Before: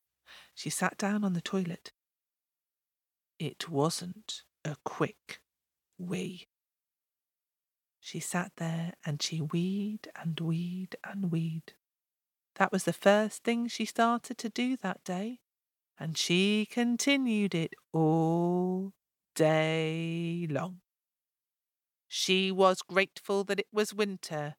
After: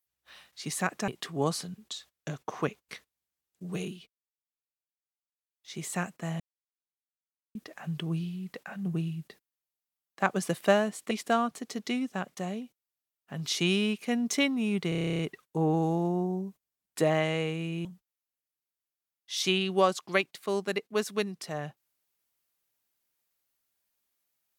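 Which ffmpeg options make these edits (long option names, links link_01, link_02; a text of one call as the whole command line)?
ffmpeg -i in.wav -filter_complex "[0:a]asplit=18[link_01][link_02][link_03][link_04][link_05][link_06][link_07][link_08][link_09][link_10][link_11][link_12][link_13][link_14][link_15][link_16][link_17][link_18];[link_01]atrim=end=1.082[link_19];[link_02]atrim=start=3.458:end=6.53,asetpts=PTS-STARTPTS,afade=type=out:start_time=2.822:duration=0.25:silence=0.237137[link_20];[link_03]atrim=start=6.53:end=7.86,asetpts=PTS-STARTPTS,volume=-12.5dB[link_21];[link_04]atrim=start=7.86:end=8.78,asetpts=PTS-STARTPTS,afade=type=in:duration=0.25:silence=0.237137,afade=type=out:start_time=0.916:duration=0.004:curve=hsin[link_22];[link_05]atrim=start=8.78:end=9.93,asetpts=PTS-STARTPTS,volume=0[link_23];[link_06]atrim=start=9.93:end=13.492,asetpts=PTS-STARTPTS,afade=type=in:duration=0.004:curve=hsin[link_24];[link_07]atrim=start=13.798:end=17.612[link_25];[link_08]atrim=start=17.578:end=17.612[link_26];[link_09]atrim=start=17.578:end=17.612[link_27];[link_10]atrim=start=17.578:end=17.612[link_28];[link_11]atrim=start=17.578:end=17.612[link_29];[link_12]atrim=start=17.578:end=17.612[link_30];[link_13]atrim=start=17.578:end=17.612[link_31];[link_14]atrim=start=17.578:end=17.612[link_32];[link_15]atrim=start=17.578:end=17.612[link_33];[link_16]atrim=start=17.578:end=17.612[link_34];[link_17]atrim=start=17.578:end=20.242[link_35];[link_18]atrim=start=20.668[link_36];[link_20][link_21][link_22][link_23][link_24]concat=n=5:v=0:a=1[link_37];[link_19][link_37]acrossfade=duration=0.004:curve1=hsin:curve2=hsin[link_38];[link_38][link_25]acrossfade=duration=0.004:curve1=hsin:curve2=hsin[link_39];[link_39][link_26]acrossfade=duration=0.004:curve1=hsin:curve2=hsin[link_40];[link_40][link_27]acrossfade=duration=0.004:curve1=hsin:curve2=hsin[link_41];[link_41][link_28]acrossfade=duration=0.004:curve1=hsin:curve2=hsin[link_42];[link_42][link_29]acrossfade=duration=0.004:curve1=hsin:curve2=hsin[link_43];[link_43][link_30]acrossfade=duration=0.004:curve1=hsin:curve2=hsin[link_44];[link_44][link_31]acrossfade=duration=0.004:curve1=hsin:curve2=hsin[link_45];[link_45][link_32]acrossfade=duration=0.004:curve1=hsin:curve2=hsin[link_46];[link_46][link_33]acrossfade=duration=0.004:curve1=hsin:curve2=hsin[link_47];[link_47][link_34]acrossfade=duration=0.004:curve1=hsin:curve2=hsin[link_48];[link_48][link_35]acrossfade=duration=0.004:curve1=hsin:curve2=hsin[link_49];[link_49][link_36]acrossfade=duration=0.004:curve1=hsin:curve2=hsin" out.wav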